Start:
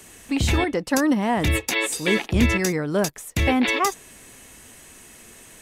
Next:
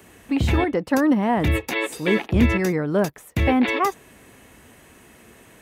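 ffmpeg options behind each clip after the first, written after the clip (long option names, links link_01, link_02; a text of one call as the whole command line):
ffmpeg -i in.wav -af "highpass=50,equalizer=frequency=7400:width=0.47:gain=-13,volume=2dB" out.wav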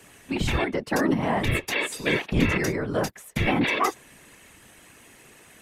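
ffmpeg -i in.wav -af "lowpass=12000,tiltshelf=frequency=1400:gain=-4,afftfilt=real='hypot(re,im)*cos(2*PI*random(0))':imag='hypot(re,im)*sin(2*PI*random(1))':win_size=512:overlap=0.75,volume=4.5dB" out.wav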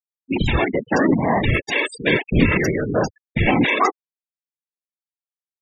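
ffmpeg -i in.wav -af "afftfilt=real='re*gte(hypot(re,im),0.0501)':imag='im*gte(hypot(re,im),0.0501)':win_size=1024:overlap=0.75,volume=6dB" out.wav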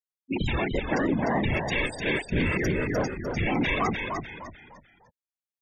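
ffmpeg -i in.wav -filter_complex "[0:a]alimiter=limit=-11dB:level=0:latency=1:release=11,asplit=5[link_01][link_02][link_03][link_04][link_05];[link_02]adelay=300,afreqshift=-64,volume=-5dB[link_06];[link_03]adelay=600,afreqshift=-128,volume=-14.1dB[link_07];[link_04]adelay=900,afreqshift=-192,volume=-23.2dB[link_08];[link_05]adelay=1200,afreqshift=-256,volume=-32.4dB[link_09];[link_01][link_06][link_07][link_08][link_09]amix=inputs=5:normalize=0,volume=-7dB" out.wav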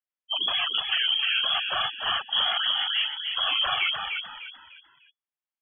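ffmpeg -i in.wav -af "lowpass=frequency=2900:width_type=q:width=0.5098,lowpass=frequency=2900:width_type=q:width=0.6013,lowpass=frequency=2900:width_type=q:width=0.9,lowpass=frequency=2900:width_type=q:width=2.563,afreqshift=-3400" out.wav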